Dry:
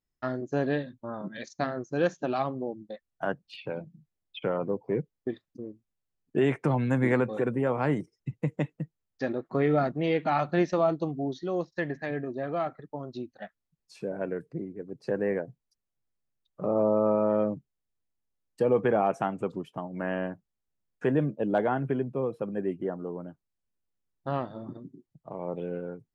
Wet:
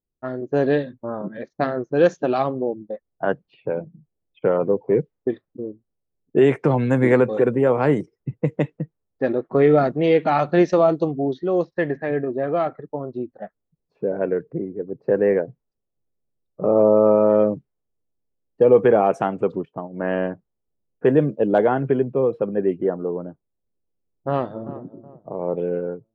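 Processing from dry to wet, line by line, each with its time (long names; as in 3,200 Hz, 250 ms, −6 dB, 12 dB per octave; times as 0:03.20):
0:19.65–0:20.13: expander for the loud parts, over −45 dBFS
0:24.29–0:24.81: delay throw 370 ms, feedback 40%, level −15 dB
whole clip: low-pass that shuts in the quiet parts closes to 610 Hz, open at −22 dBFS; parametric band 450 Hz +6 dB 0.82 octaves; automatic gain control gain up to 6 dB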